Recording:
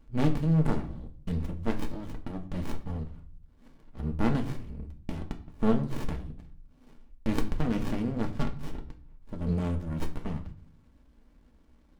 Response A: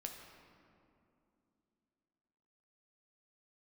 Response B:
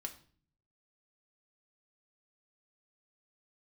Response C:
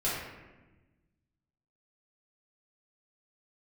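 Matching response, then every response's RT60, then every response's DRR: B; 2.7, 0.45, 1.2 s; 2.0, 3.5, -9.5 dB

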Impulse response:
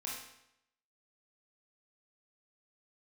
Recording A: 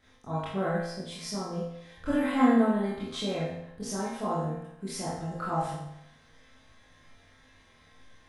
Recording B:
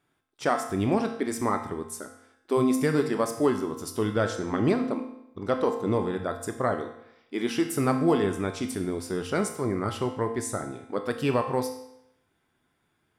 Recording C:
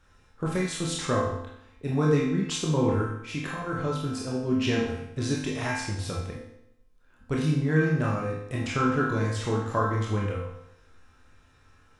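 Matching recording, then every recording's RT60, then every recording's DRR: C; 0.80, 0.80, 0.80 s; -10.5, 4.5, -5.0 dB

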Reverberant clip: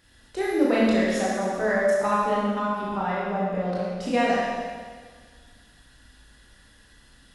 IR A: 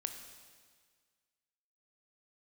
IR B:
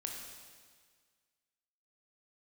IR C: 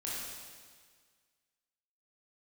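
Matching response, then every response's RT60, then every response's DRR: C; 1.7, 1.7, 1.7 s; 6.0, 0.5, -7.0 dB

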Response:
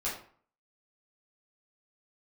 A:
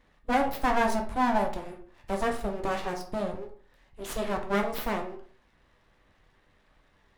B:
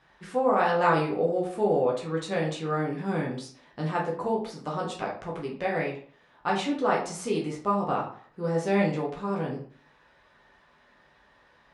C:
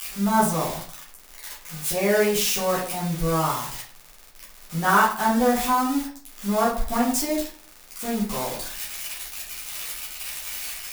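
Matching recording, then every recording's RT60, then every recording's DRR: C; 0.50, 0.50, 0.50 s; 2.5, -3.5, -8.5 dB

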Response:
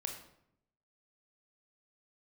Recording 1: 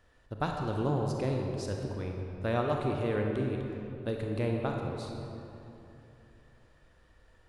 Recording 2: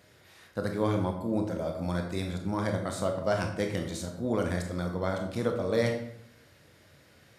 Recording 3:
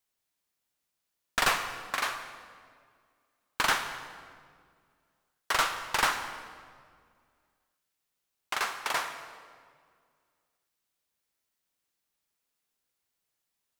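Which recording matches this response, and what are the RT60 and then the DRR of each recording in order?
2; 3.0, 0.75, 2.0 s; 1.0, 3.0, 8.0 dB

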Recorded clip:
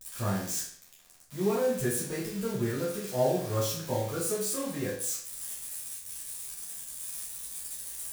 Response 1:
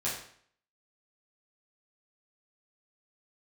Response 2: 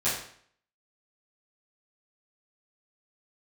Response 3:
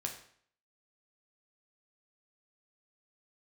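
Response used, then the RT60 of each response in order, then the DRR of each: 1; 0.60, 0.60, 0.60 s; -8.0, -12.5, 2.0 dB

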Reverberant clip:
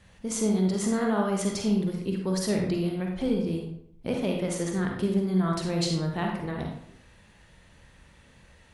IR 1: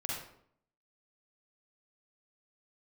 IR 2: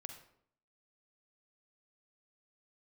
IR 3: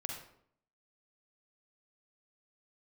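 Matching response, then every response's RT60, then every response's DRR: 3; 0.65, 0.65, 0.65 s; -4.5, 5.0, 0.5 dB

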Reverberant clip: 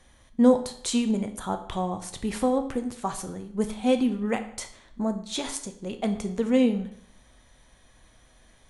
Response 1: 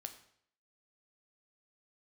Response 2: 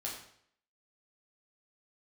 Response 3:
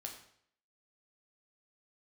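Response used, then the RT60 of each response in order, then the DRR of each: 1; 0.65, 0.65, 0.65 s; 6.5, -4.0, 1.0 dB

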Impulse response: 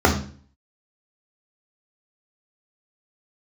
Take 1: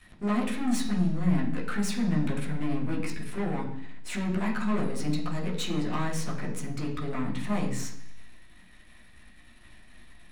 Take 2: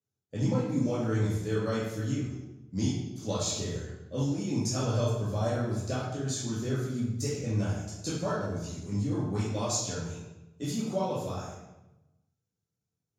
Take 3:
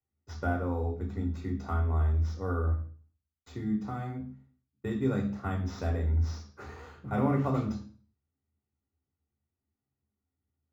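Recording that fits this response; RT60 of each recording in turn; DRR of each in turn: 3; 0.70, 1.0, 0.45 s; -4.0, -9.5, -1.0 dB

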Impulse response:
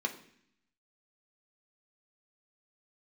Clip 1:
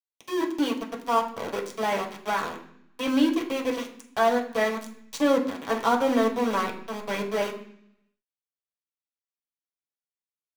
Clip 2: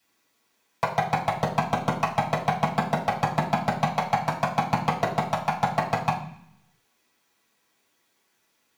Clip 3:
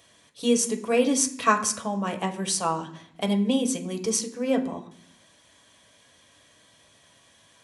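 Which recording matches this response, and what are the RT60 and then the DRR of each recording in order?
3; 0.65, 0.65, 0.65 s; -1.5, -7.5, 2.5 dB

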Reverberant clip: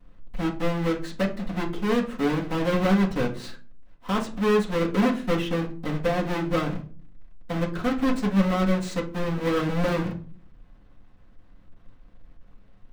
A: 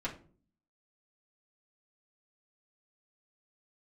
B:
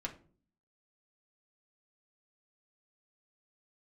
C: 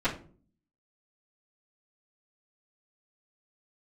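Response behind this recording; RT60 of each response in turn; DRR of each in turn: C; 0.45, 0.45, 0.45 s; -7.5, -1.5, -15.0 dB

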